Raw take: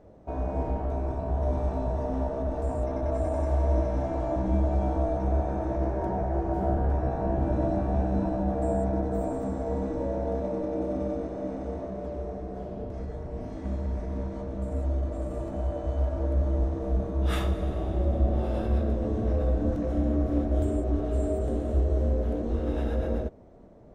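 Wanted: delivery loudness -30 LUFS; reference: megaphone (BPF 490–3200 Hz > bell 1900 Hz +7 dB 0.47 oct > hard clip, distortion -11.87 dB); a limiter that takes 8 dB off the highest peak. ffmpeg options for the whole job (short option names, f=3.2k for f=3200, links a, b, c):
-af "alimiter=limit=-21dB:level=0:latency=1,highpass=490,lowpass=3.2k,equalizer=f=1.9k:t=o:w=0.47:g=7,asoftclip=type=hard:threshold=-34dB,volume=9dB"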